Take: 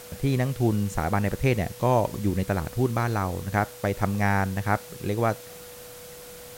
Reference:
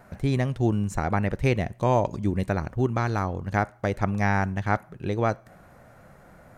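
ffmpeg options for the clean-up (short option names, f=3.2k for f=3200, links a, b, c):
-af "bandreject=f=490:w=30,afwtdn=0.0056"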